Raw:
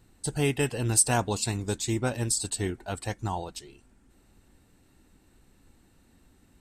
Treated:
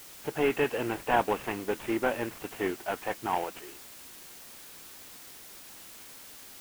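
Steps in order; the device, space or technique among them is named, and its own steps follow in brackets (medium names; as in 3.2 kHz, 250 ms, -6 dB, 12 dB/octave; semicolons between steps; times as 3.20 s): army field radio (band-pass 350–3100 Hz; CVSD coder 16 kbps; white noise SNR 15 dB); trim +5 dB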